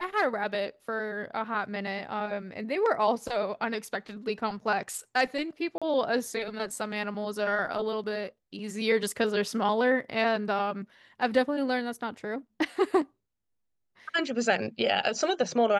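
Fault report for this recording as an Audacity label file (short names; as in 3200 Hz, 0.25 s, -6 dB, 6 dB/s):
5.780000	5.820000	gap 36 ms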